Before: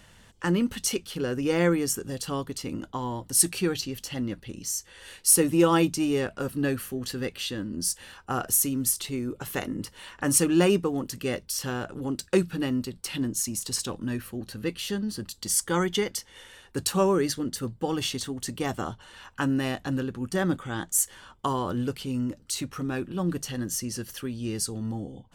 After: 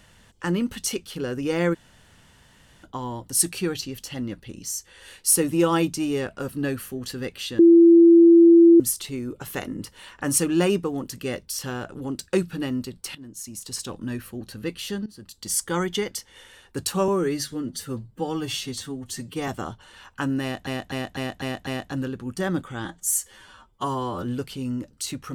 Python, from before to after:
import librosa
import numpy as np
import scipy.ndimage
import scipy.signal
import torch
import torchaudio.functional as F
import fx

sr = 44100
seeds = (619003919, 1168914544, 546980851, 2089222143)

y = fx.edit(x, sr, fx.room_tone_fill(start_s=1.74, length_s=1.1, crossfade_s=0.02),
    fx.bleep(start_s=7.59, length_s=1.21, hz=337.0, db=-8.5),
    fx.fade_in_from(start_s=13.15, length_s=0.88, floor_db=-19.0),
    fx.fade_in_from(start_s=15.06, length_s=0.48, floor_db=-18.5),
    fx.stretch_span(start_s=17.08, length_s=1.6, factor=1.5),
    fx.repeat(start_s=19.62, length_s=0.25, count=6),
    fx.stretch_span(start_s=20.8, length_s=0.92, factor=1.5), tone=tone)